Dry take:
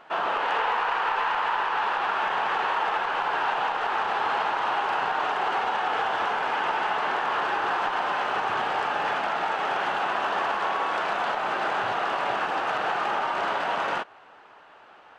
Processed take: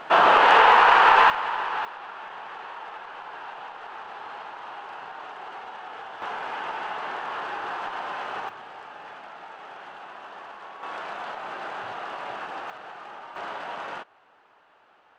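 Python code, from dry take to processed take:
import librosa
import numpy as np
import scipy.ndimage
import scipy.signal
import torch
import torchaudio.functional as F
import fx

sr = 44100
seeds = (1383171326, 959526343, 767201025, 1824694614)

y = fx.gain(x, sr, db=fx.steps((0.0, 10.5), (1.3, -2.0), (1.85, -13.0), (6.22, -6.0), (8.49, -15.5), (10.83, -8.0), (12.7, -15.0), (13.36, -8.0)))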